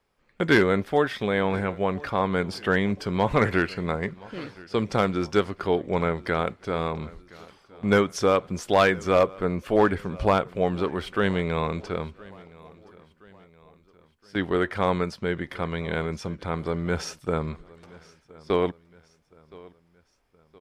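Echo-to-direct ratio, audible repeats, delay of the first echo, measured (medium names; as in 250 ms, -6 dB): -21.5 dB, 2, 1019 ms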